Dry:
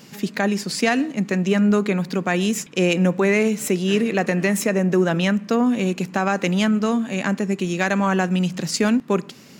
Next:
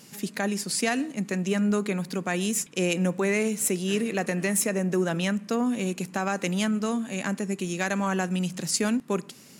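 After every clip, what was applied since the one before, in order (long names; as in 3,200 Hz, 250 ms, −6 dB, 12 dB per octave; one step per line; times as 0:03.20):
parametric band 10,000 Hz +13 dB 1 octave
level −7 dB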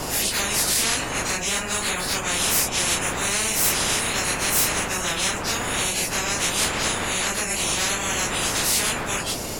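random phases in long frames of 100 ms
wind on the microphone 170 Hz −22 dBFS
every bin compressed towards the loudest bin 10 to 1
level −7 dB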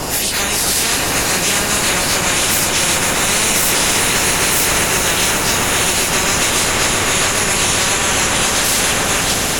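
brickwall limiter −14 dBFS, peak gain reduction 6 dB
echo that builds up and dies away 133 ms, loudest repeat 5, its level −10 dB
level +7 dB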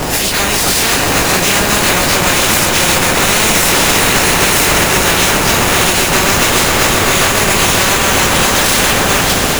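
each half-wave held at its own peak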